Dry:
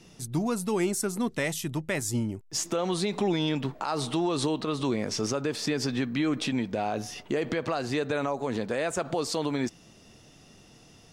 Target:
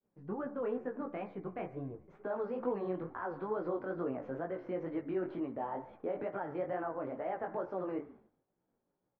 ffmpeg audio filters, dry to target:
ffmpeg -i in.wav -filter_complex "[0:a]asetrate=53361,aresample=44100,lowpass=frequency=1700:width=0.5412,lowpass=frequency=1700:width=1.3066,lowshelf=frequency=170:gain=-5,bandreject=frequency=73.19:width_type=h:width=4,bandreject=frequency=146.38:width_type=h:width=4,bandreject=frequency=219.57:width_type=h:width=4,bandreject=frequency=292.76:width_type=h:width=4,bandreject=frequency=365.95:width_type=h:width=4,bandreject=frequency=439.14:width_type=h:width=4,bandreject=frequency=512.33:width_type=h:width=4,bandreject=frequency=585.52:width_type=h:width=4,bandreject=frequency=658.71:width_type=h:width=4,bandreject=frequency=731.9:width_type=h:width=4,bandreject=frequency=805.09:width_type=h:width=4,bandreject=frequency=878.28:width_type=h:width=4,bandreject=frequency=951.47:width_type=h:width=4,bandreject=frequency=1024.66:width_type=h:width=4,bandreject=frequency=1097.85:width_type=h:width=4,bandreject=frequency=1171.04:width_type=h:width=4,bandreject=frequency=1244.23:width_type=h:width=4,bandreject=frequency=1317.42:width_type=h:width=4,bandreject=frequency=1390.61:width_type=h:width=4,bandreject=frequency=1463.8:width_type=h:width=4,bandreject=frequency=1536.99:width_type=h:width=4,bandreject=frequency=1610.18:width_type=h:width=4,bandreject=frequency=1683.37:width_type=h:width=4,bandreject=frequency=1756.56:width_type=h:width=4,bandreject=frequency=1829.75:width_type=h:width=4,bandreject=frequency=1902.94:width_type=h:width=4,bandreject=frequency=1976.13:width_type=h:width=4,bandreject=frequency=2049.32:width_type=h:width=4,bandreject=frequency=2122.51:width_type=h:width=4,bandreject=frequency=2195.7:width_type=h:width=4,bandreject=frequency=2268.89:width_type=h:width=4,bandreject=frequency=2342.08:width_type=h:width=4,flanger=delay=15.5:depth=6.6:speed=2.2,equalizer=frequency=510:width_type=o:width=1.8:gain=3.5,asplit=4[link_01][link_02][link_03][link_04];[link_02]adelay=140,afreqshift=-54,volume=-21dB[link_05];[link_03]adelay=280,afreqshift=-108,volume=-28.5dB[link_06];[link_04]adelay=420,afreqshift=-162,volume=-36.1dB[link_07];[link_01][link_05][link_06][link_07]amix=inputs=4:normalize=0,agate=range=-33dB:threshold=-46dB:ratio=3:detection=peak,volume=-7dB" out.wav

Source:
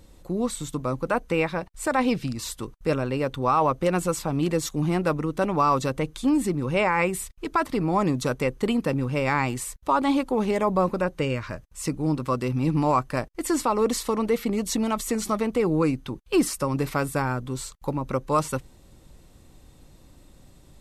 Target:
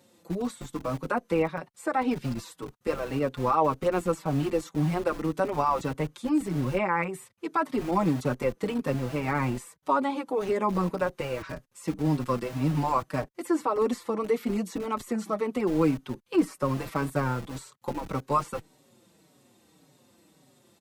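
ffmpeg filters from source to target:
ffmpeg -i in.wav -filter_complex "[0:a]acrossover=split=140|2100[link_01][link_02][link_03];[link_01]acrusher=bits=5:mix=0:aa=0.000001[link_04];[link_03]acompressor=threshold=-43dB:ratio=6[link_05];[link_04][link_02][link_05]amix=inputs=3:normalize=0,asplit=2[link_06][link_07];[link_07]adelay=5.1,afreqshift=-1.8[link_08];[link_06][link_08]amix=inputs=2:normalize=1" out.wav

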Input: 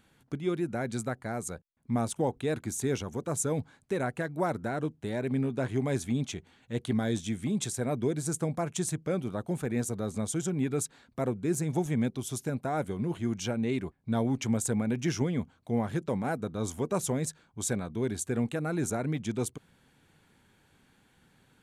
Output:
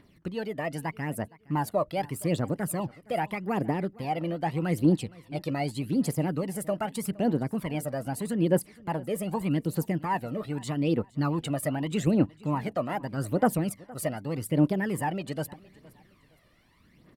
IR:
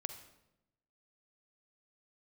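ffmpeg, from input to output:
-filter_complex "[0:a]aphaser=in_gain=1:out_gain=1:delay=2.2:decay=0.63:speed=0.65:type=triangular,asetrate=55566,aresample=44100,bass=frequency=250:gain=1,treble=frequency=4000:gain=-6,asplit=2[link_01][link_02];[link_02]aecho=0:1:465|930:0.075|0.024[link_03];[link_01][link_03]amix=inputs=2:normalize=0"

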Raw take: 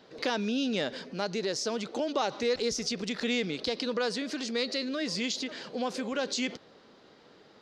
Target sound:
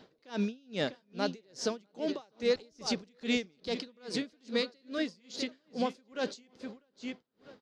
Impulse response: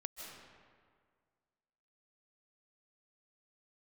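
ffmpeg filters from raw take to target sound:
-filter_complex "[0:a]lowshelf=frequency=290:gain=6,asplit=2[link_01][link_02];[link_02]adelay=650,lowpass=frequency=4000:poles=1,volume=-9dB,asplit=2[link_03][link_04];[link_04]adelay=650,lowpass=frequency=4000:poles=1,volume=0.18,asplit=2[link_05][link_06];[link_06]adelay=650,lowpass=frequency=4000:poles=1,volume=0.18[link_07];[link_01][link_03][link_05][link_07]amix=inputs=4:normalize=0,aeval=exprs='val(0)*pow(10,-36*(0.5-0.5*cos(2*PI*2.4*n/s))/20)':channel_layout=same"

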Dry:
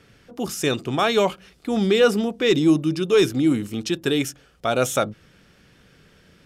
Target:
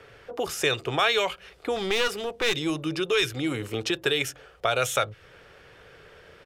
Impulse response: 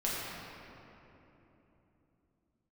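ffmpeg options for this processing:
-filter_complex "[0:a]firequalizer=gain_entry='entry(110,0);entry(210,-11);entry(430,9);entry(5500,-3)':delay=0.05:min_phase=1,acrossover=split=130|1700[link_01][link_02][link_03];[link_02]acompressor=threshold=-26dB:ratio=6[link_04];[link_01][link_04][link_03]amix=inputs=3:normalize=0,asettb=1/sr,asplit=3[link_05][link_06][link_07];[link_05]atrim=end=1.764[link_08];[link_06]atrim=start=1.76:end=2.55,asetpts=PTS-STARTPTS,afade=type=in:duration=0.004:curve=qsin,afade=type=out:start_time=0.786:duration=0.004:curve=qsin,aeval=exprs='clip(val(0),-1,0.0316)':channel_layout=same[link_09];[link_07]atrim=start=2.546[link_10];[link_08][link_09]acrossfade=duration=0.004:curve1=hsin:curve2=qsin[link_11];[link_11][link_10]acrossfade=duration=0.004:curve1=qsin:curve2=hsin"

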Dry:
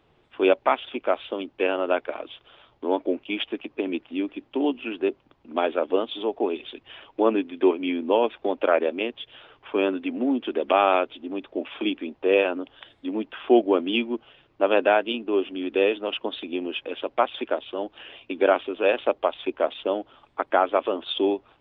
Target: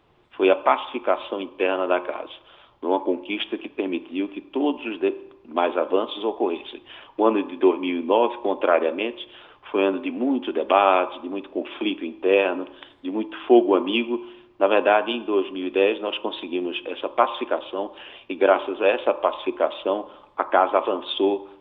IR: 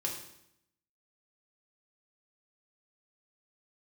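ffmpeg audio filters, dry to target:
-filter_complex "[0:a]asplit=2[link_01][link_02];[link_02]equalizer=frequency=1000:width_type=o:width=0.82:gain=14[link_03];[1:a]atrim=start_sample=2205[link_04];[link_03][link_04]afir=irnorm=-1:irlink=0,volume=-15.5dB[link_05];[link_01][link_05]amix=inputs=2:normalize=0"

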